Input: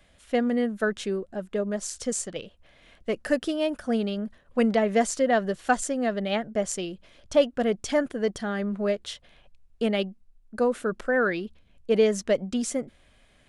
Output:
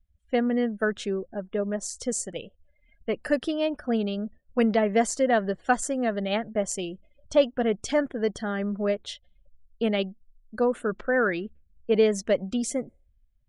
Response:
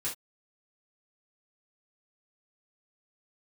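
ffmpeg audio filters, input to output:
-af "afftdn=noise_reduction=35:noise_floor=-47"

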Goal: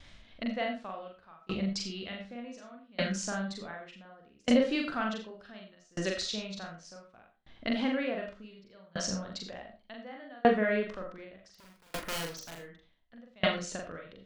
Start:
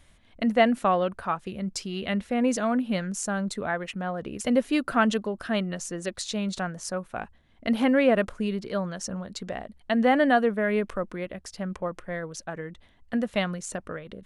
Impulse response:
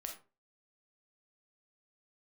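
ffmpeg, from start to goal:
-filter_complex "[0:a]lowpass=frequency=5100:width=0.5412,lowpass=frequency=5100:width=1.3066,highshelf=frequency=3800:gain=12,asplit=2[link_01][link_02];[link_02]acompressor=threshold=-37dB:ratio=4,volume=1dB[link_03];[link_01][link_03]amix=inputs=2:normalize=0,asettb=1/sr,asplit=3[link_04][link_05][link_06];[link_04]atrim=end=11.514[link_07];[link_05]atrim=start=11.51:end=12.57,asetpts=PTS-STARTPTS,afade=type=in:duration=0.004:curve=qsin,afade=type=out:start_time=1.056:duration=0.004:curve=qsin,aeval=exprs='(mod(13.3*val(0)+1,2)-1)/13.3':channel_layout=same[link_08];[link_06]atrim=start=12.566[link_09];[link_07][link_08]acrossfade=duration=0.004:curve1=hsin:curve2=qsin[link_10];[link_10][link_09]acrossfade=duration=0.004:curve1=qsin:curve2=hsin,asplit=2[link_11][link_12];[1:a]atrim=start_sample=2205,adelay=42[link_13];[link_12][link_13]afir=irnorm=-1:irlink=0,volume=3dB[link_14];[link_11][link_14]amix=inputs=2:normalize=0,aeval=exprs='val(0)*pow(10,-32*if(lt(mod(0.67*n/s,1),2*abs(0.67)/1000),1-mod(0.67*n/s,1)/(2*abs(0.67)/1000),(mod(0.67*n/s,1)-2*abs(0.67)/1000)/(1-2*abs(0.67)/1000))/20)':channel_layout=same,volume=-4dB"

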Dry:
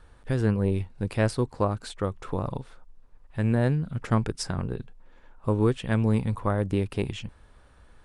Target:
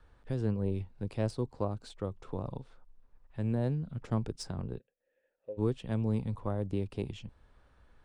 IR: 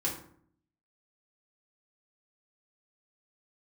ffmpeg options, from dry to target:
-filter_complex "[0:a]acrossover=split=170|1100|2600[link_01][link_02][link_03][link_04];[link_03]acompressor=threshold=-59dB:ratio=6[link_05];[link_01][link_02][link_05][link_04]amix=inputs=4:normalize=0,asplit=3[link_06][link_07][link_08];[link_06]afade=type=out:start_time=4.78:duration=0.02[link_09];[link_07]asplit=3[link_10][link_11][link_12];[link_10]bandpass=frequency=530:width_type=q:width=8,volume=0dB[link_13];[link_11]bandpass=frequency=1840:width_type=q:width=8,volume=-6dB[link_14];[link_12]bandpass=frequency=2480:width_type=q:width=8,volume=-9dB[link_15];[link_13][link_14][link_15]amix=inputs=3:normalize=0,afade=type=in:start_time=4.78:duration=0.02,afade=type=out:start_time=5.57:duration=0.02[link_16];[link_08]afade=type=in:start_time=5.57:duration=0.02[link_17];[link_09][link_16][link_17]amix=inputs=3:normalize=0,adynamicsmooth=sensitivity=4:basefreq=7300,volume=-7.5dB"

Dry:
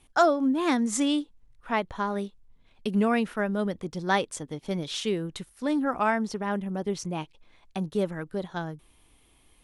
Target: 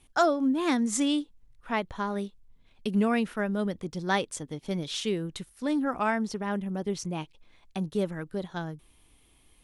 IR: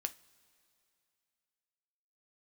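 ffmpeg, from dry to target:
-af "equalizer=frequency=860:width=0.52:gain=-3"

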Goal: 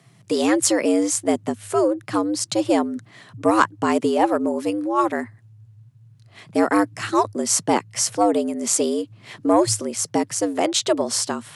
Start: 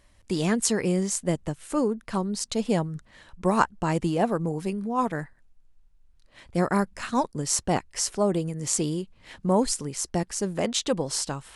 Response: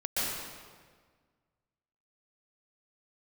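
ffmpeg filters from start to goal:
-af "afreqshift=99,acontrast=48"

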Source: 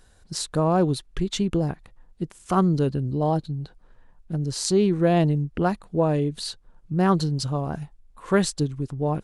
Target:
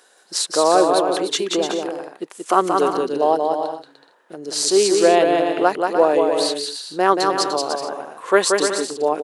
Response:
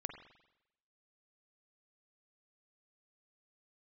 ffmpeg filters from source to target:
-filter_complex "[0:a]highpass=frequency=370:width=0.5412,highpass=frequency=370:width=1.3066,asplit=3[link_01][link_02][link_03];[link_01]afade=type=out:start_time=3.36:duration=0.02[link_04];[link_02]acompressor=threshold=-43dB:ratio=2,afade=type=in:start_time=3.36:duration=0.02,afade=type=out:start_time=4.36:duration=0.02[link_05];[link_03]afade=type=in:start_time=4.36:duration=0.02[link_06];[link_04][link_05][link_06]amix=inputs=3:normalize=0,aecho=1:1:180|297|373|422.5|454.6:0.631|0.398|0.251|0.158|0.1,alimiter=level_in=9dB:limit=-1dB:release=50:level=0:latency=1,volume=-1dB"

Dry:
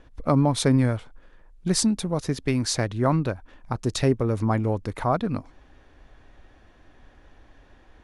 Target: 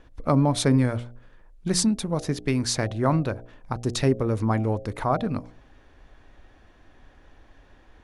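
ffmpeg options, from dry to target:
ffmpeg -i in.wav -af "bandreject=frequency=59.69:width_type=h:width=4,bandreject=frequency=119.38:width_type=h:width=4,bandreject=frequency=179.07:width_type=h:width=4,bandreject=frequency=238.76:width_type=h:width=4,bandreject=frequency=298.45:width_type=h:width=4,bandreject=frequency=358.14:width_type=h:width=4,bandreject=frequency=417.83:width_type=h:width=4,bandreject=frequency=477.52:width_type=h:width=4,bandreject=frequency=537.21:width_type=h:width=4,bandreject=frequency=596.9:width_type=h:width=4,bandreject=frequency=656.59:width_type=h:width=4,bandreject=frequency=716.28:width_type=h:width=4,bandreject=frequency=775.97:width_type=h:width=4" out.wav

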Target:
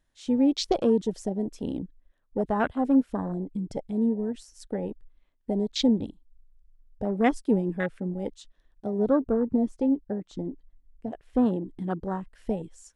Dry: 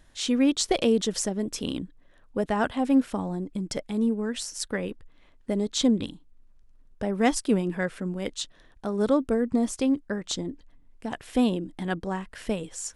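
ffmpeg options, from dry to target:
ffmpeg -i in.wav -filter_complex "[0:a]afwtdn=0.0316,asettb=1/sr,asplit=3[link_01][link_02][link_03];[link_01]atrim=end=8.984[link_04];[link_02]atrim=start=8.98:end=11.46,asetpts=PTS-STARTPTS,afade=type=in:duration=0.004:curve=qsin,afade=type=out:start_time=2.476:duration=0.004:curve=qsin,highshelf=frequency=4100:gain=-10[link_05];[link_03]atrim=start=11.456[link_06];[link_04][link_05]acrossfade=duration=0.004:curve1=hsin:curve2=qsin[link_07];[link_07][link_06]acrossfade=duration=0.004:curve1=qsin:curve2=hsin" out.wav

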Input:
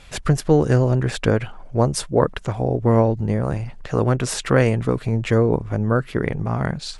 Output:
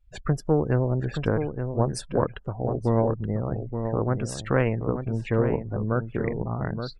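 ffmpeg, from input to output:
ffmpeg -i in.wav -filter_complex "[0:a]aeval=exprs='0.794*(cos(1*acos(clip(val(0)/0.794,-1,1)))-cos(1*PI/2))+0.0631*(cos(3*acos(clip(val(0)/0.794,-1,1)))-cos(3*PI/2))+0.0251*(cos(4*acos(clip(val(0)/0.794,-1,1)))-cos(4*PI/2))':channel_layout=same,afftdn=noise_reduction=34:noise_floor=-32,asplit=2[link_01][link_02];[link_02]adelay=874.6,volume=-7dB,highshelf=frequency=4000:gain=-19.7[link_03];[link_01][link_03]amix=inputs=2:normalize=0,volume=-5dB" out.wav

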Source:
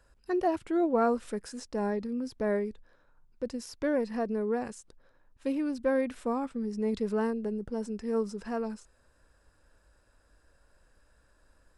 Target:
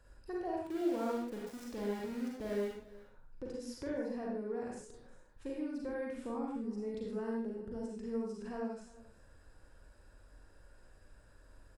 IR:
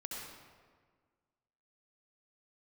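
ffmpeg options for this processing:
-filter_complex "[0:a]lowshelf=frequency=440:gain=5,acompressor=threshold=-46dB:ratio=2,asettb=1/sr,asplit=3[link_01][link_02][link_03];[link_01]atrim=end=0.624[link_04];[link_02]atrim=start=0.62:end=2.68,asetpts=PTS-STARTPTS,afade=type=in:duration=0.004:curve=qsin,afade=type=out:start_time=2.056:duration=0.004:curve=qsin,aeval=exprs='val(0)*gte(abs(val(0)),0.00562)':channel_layout=same[link_05];[link_03]atrim=start=2.676[link_06];[link_04][link_05]acrossfade=duration=0.004:curve1=hsin:curve2=qsin[link_07];[link_07][link_06]acrossfade=duration=0.004:curve1=qsin:curve2=hsin,aecho=1:1:354:0.1[link_08];[1:a]atrim=start_sample=2205,afade=type=out:start_time=0.33:duration=0.01,atrim=end_sample=14994,asetrate=74970,aresample=44100[link_09];[link_08][link_09]afir=irnorm=-1:irlink=0,volume=6.5dB"

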